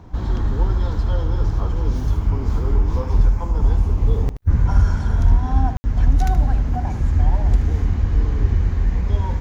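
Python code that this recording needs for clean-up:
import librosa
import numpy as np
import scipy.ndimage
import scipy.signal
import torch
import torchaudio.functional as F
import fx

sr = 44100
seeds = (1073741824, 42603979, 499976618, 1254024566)

y = fx.fix_declip(x, sr, threshold_db=-6.5)
y = fx.fix_ambience(y, sr, seeds[0], print_start_s=3.97, print_end_s=4.47, start_s=5.77, end_s=5.84)
y = fx.fix_echo_inverse(y, sr, delay_ms=76, level_db=-12.0)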